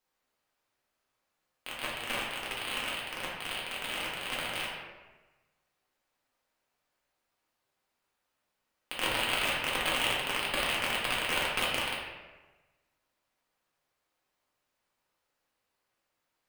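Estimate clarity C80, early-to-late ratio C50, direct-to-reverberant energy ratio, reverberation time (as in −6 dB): 3.0 dB, 0.5 dB, −6.0 dB, 1.2 s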